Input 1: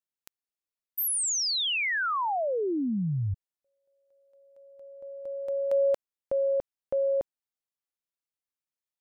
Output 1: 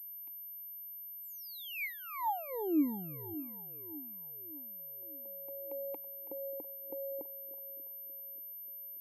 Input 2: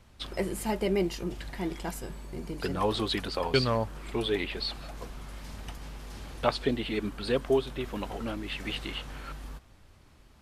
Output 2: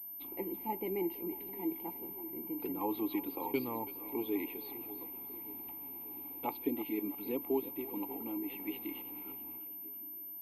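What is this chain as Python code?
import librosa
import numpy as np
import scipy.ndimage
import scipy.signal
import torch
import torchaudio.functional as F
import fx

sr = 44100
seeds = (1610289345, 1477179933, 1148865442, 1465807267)

y = fx.vowel_filter(x, sr, vowel='u')
y = fx.peak_eq(y, sr, hz=530.0, db=14.0, octaves=0.67)
y = fx.echo_split(y, sr, split_hz=440.0, low_ms=585, high_ms=328, feedback_pct=52, wet_db=-13.5)
y = fx.pwm(y, sr, carrier_hz=13000.0)
y = y * 10.0 ** (1.0 / 20.0)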